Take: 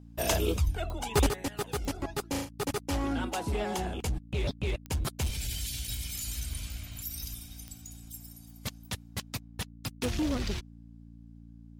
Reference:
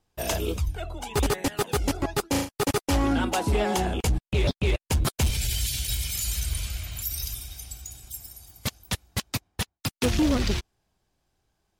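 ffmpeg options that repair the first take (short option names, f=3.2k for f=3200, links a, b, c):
-af "adeclick=t=4,bandreject=f=57.1:t=h:w=4,bandreject=f=114.2:t=h:w=4,bandreject=f=171.3:t=h:w=4,bandreject=f=228.4:t=h:w=4,bandreject=f=285.5:t=h:w=4,asetnsamples=n=441:p=0,asendcmd='1.29 volume volume 7.5dB',volume=0dB"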